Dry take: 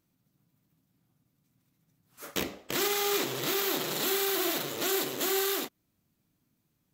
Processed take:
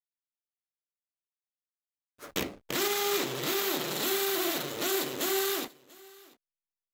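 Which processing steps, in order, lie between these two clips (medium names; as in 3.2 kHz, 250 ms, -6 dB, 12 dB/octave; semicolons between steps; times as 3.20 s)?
hysteresis with a dead band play -40.5 dBFS; delay 689 ms -23.5 dB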